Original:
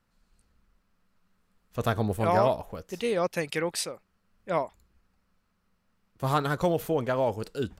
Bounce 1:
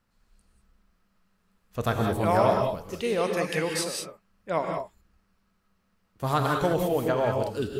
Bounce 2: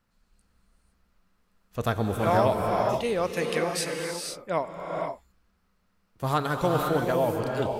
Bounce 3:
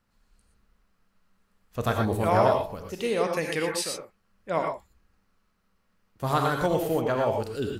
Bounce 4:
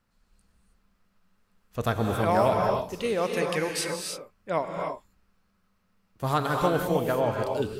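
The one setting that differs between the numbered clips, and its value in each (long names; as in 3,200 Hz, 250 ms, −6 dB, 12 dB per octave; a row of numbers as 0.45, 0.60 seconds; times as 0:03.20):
reverb whose tail is shaped and stops, gate: 220, 530, 140, 340 milliseconds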